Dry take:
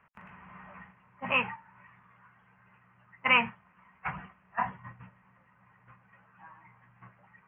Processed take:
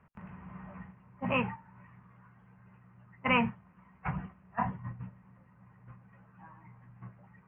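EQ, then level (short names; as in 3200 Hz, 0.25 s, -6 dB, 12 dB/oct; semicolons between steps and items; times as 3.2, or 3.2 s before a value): tilt shelf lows +8.5 dB, about 640 Hz; +1.0 dB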